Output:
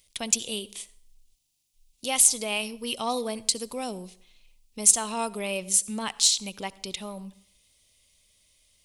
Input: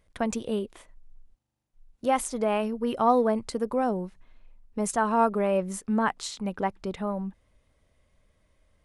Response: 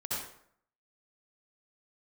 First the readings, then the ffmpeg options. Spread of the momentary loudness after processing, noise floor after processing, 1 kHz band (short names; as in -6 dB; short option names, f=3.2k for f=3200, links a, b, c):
17 LU, -69 dBFS, -7.5 dB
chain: -filter_complex "[0:a]aexciter=amount=8.2:drive=8.3:freq=2.4k,asplit=2[a][b];[1:a]atrim=start_sample=2205[c];[b][c]afir=irnorm=-1:irlink=0,volume=-23dB[d];[a][d]amix=inputs=2:normalize=0,volume=-8dB"